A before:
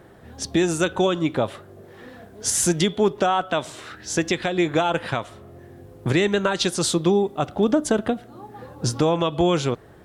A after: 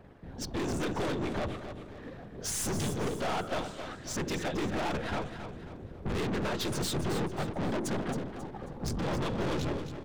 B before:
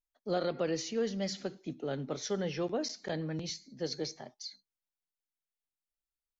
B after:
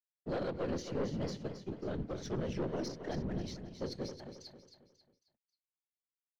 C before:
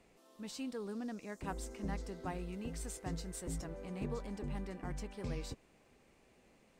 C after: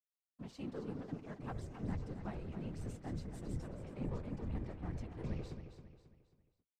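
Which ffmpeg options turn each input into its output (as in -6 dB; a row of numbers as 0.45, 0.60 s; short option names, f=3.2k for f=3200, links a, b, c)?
-filter_complex "[0:a]equalizer=f=13k:t=o:w=0.3:g=11.5,bandreject=f=60:t=h:w=6,bandreject=f=120:t=h:w=6,bandreject=f=180:t=h:w=6,bandreject=f=240:t=h:w=6,bandreject=f=300:t=h:w=6,bandreject=f=360:t=h:w=6,bandreject=f=420:t=h:w=6,bandreject=f=480:t=h:w=6,aeval=exprs='sgn(val(0))*max(abs(val(0))-0.00251,0)':c=same,afftfilt=real='hypot(re,im)*cos(2*PI*random(0))':imag='hypot(re,im)*sin(2*PI*random(1))':win_size=512:overlap=0.75,adynamicsmooth=sensitivity=6:basefreq=5.5k,lowshelf=f=370:g=9.5,aeval=exprs='(tanh(44.7*val(0)+0.3)-tanh(0.3))/44.7':c=same,asplit=2[a][b];[b]aecho=0:1:270|540|810|1080:0.335|0.131|0.0509|0.0199[c];[a][c]amix=inputs=2:normalize=0,volume=2.5dB"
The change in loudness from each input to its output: -11.5, -3.0, -1.5 LU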